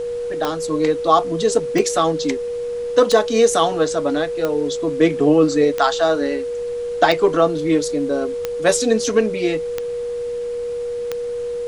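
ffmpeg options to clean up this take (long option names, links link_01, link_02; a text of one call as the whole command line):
ffmpeg -i in.wav -af "adeclick=threshold=4,bandreject=frequency=480:width=30,agate=range=-21dB:threshold=-17dB" out.wav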